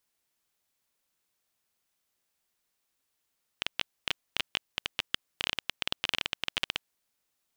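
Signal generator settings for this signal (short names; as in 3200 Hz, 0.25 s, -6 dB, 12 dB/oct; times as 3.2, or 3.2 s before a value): random clicks 14/s -10 dBFS 3.25 s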